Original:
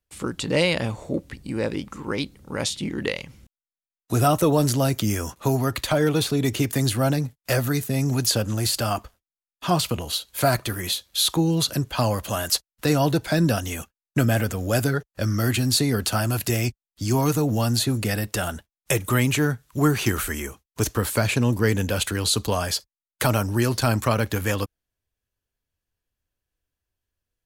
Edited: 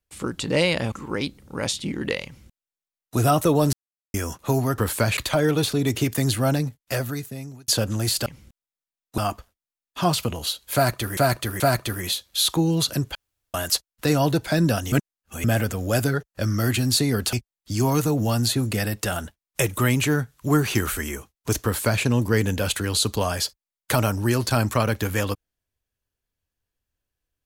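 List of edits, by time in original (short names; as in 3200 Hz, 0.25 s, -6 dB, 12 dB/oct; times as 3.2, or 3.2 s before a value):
0.92–1.89 cut
3.22–4.14 copy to 8.84
4.7–5.11 mute
7.19–8.26 fade out
10.4–10.83 loop, 3 plays
11.95–12.34 room tone
13.72–14.24 reverse
16.13–16.64 cut
20.95–21.34 copy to 5.75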